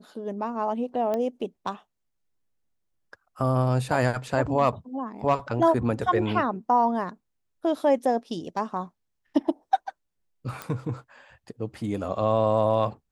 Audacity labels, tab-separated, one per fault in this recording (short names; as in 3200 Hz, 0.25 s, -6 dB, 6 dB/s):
1.140000	1.140000	pop -17 dBFS
10.620000	10.620000	pop -18 dBFS